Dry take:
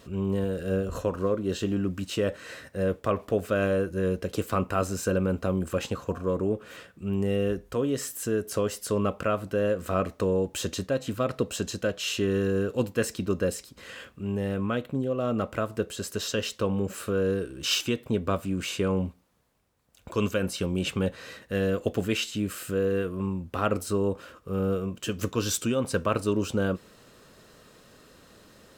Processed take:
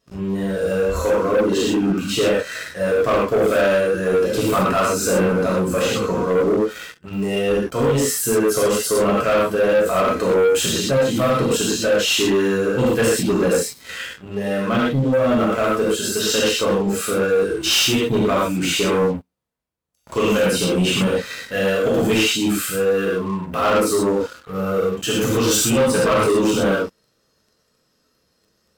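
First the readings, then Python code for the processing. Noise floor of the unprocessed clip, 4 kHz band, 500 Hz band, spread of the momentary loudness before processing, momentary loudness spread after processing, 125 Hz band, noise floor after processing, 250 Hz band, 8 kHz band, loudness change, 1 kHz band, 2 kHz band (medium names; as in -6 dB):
-56 dBFS, +12.0 dB, +10.5 dB, 5 LU, 7 LU, +5.0 dB, -66 dBFS, +8.5 dB, +12.5 dB, +10.0 dB, +11.5 dB, +12.0 dB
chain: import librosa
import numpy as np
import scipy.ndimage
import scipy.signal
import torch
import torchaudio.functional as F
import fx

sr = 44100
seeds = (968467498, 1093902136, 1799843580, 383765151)

y = fx.noise_reduce_blind(x, sr, reduce_db=10)
y = fx.rev_gated(y, sr, seeds[0], gate_ms=150, shape='flat', drr_db=-6.5)
y = fx.leveller(y, sr, passes=3)
y = y * librosa.db_to_amplitude(-4.5)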